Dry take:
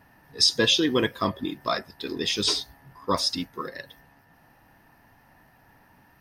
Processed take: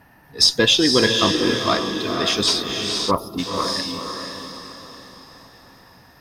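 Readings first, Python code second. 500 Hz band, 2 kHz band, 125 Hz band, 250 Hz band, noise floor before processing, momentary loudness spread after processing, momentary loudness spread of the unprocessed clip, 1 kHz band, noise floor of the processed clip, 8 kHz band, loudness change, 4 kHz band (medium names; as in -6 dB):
+7.0 dB, +7.5 dB, +7.0 dB, +7.0 dB, -59 dBFS, 18 LU, 17 LU, +7.0 dB, -51 dBFS, +6.5 dB, +6.0 dB, +6.5 dB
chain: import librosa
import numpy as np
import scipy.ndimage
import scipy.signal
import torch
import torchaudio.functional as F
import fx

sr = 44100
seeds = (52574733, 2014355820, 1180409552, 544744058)

y = fx.echo_diffused(x, sr, ms=498, feedback_pct=44, wet_db=-3.5)
y = fx.spec_box(y, sr, start_s=3.11, length_s=0.28, low_hz=1400.0, high_hz=10000.0, gain_db=-24)
y = fx.cheby_harmonics(y, sr, harmonics=(6,), levels_db=(-31,), full_scale_db=-6.0)
y = F.gain(torch.from_numpy(y), 5.0).numpy()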